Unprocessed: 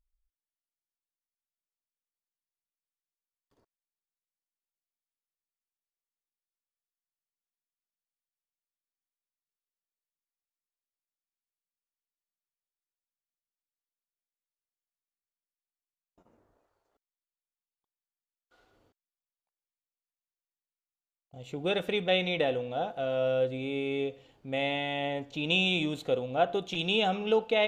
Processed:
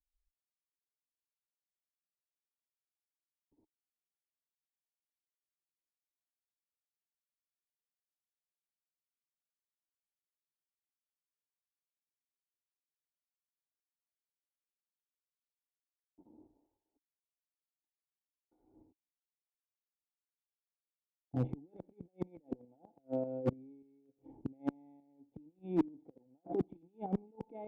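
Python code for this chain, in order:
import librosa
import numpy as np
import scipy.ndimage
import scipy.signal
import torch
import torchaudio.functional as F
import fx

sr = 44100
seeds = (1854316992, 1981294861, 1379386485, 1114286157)

y = fx.over_compress(x, sr, threshold_db=-36.0, ratio=-1.0)
y = fx.formant_cascade(y, sr, vowel='u')
y = fx.gate_flip(y, sr, shuts_db=-39.0, range_db=-30)
y = fx.tremolo_shape(y, sr, shape='saw_up', hz=3.4, depth_pct=55)
y = fx.clip_asym(y, sr, top_db=-46.0, bottom_db=-45.0)
y = fx.band_widen(y, sr, depth_pct=70)
y = y * librosa.db_to_amplitude(18.0)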